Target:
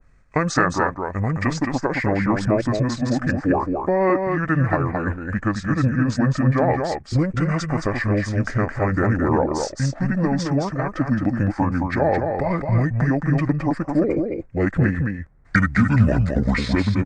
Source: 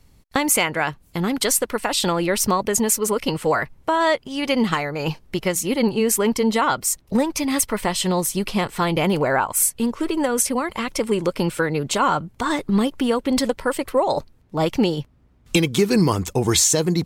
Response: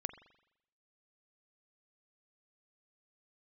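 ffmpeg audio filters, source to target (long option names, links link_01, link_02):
-af "highshelf=frequency=4200:width_type=q:width=3:gain=-8.5,asetrate=25476,aresample=44100,atempo=1.73107,aecho=1:1:217:0.562,adynamicequalizer=threshold=0.0178:dfrequency=1500:dqfactor=0.7:tfrequency=1500:tqfactor=0.7:attack=5:release=100:ratio=0.375:range=2.5:mode=cutabove:tftype=highshelf"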